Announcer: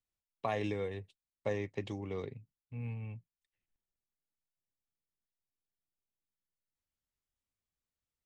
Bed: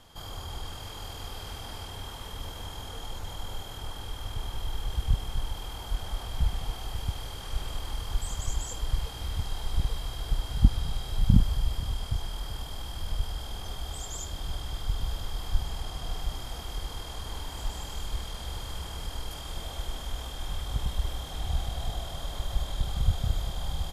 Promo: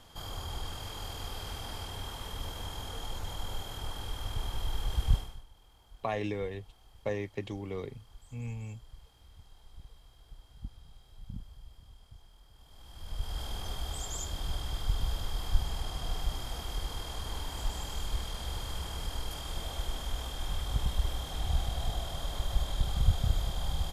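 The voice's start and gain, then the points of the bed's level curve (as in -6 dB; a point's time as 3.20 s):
5.60 s, +1.5 dB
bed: 5.16 s -0.5 dB
5.46 s -23 dB
12.52 s -23 dB
13.40 s -0.5 dB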